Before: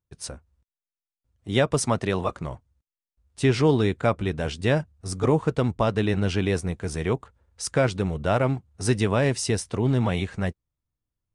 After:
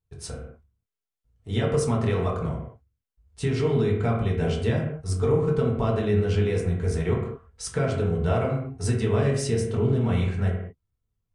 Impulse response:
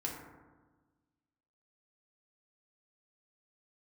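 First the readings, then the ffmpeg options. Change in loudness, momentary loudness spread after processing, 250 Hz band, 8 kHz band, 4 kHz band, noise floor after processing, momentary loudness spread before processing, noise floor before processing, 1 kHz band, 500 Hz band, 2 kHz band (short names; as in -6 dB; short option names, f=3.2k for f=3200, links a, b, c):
-0.5 dB, 10 LU, -1.5 dB, -4.5 dB, -5.5 dB, -85 dBFS, 9 LU, under -85 dBFS, -4.0 dB, -0.5 dB, -5.0 dB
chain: -filter_complex "[0:a]lowshelf=f=98:g=11,acompressor=threshold=-21dB:ratio=6[a];[1:a]atrim=start_sample=2205,afade=t=out:st=0.4:d=0.01,atrim=end_sample=18081,asetrate=66150,aresample=44100[b];[a][b]afir=irnorm=-1:irlink=0,volume=1.5dB"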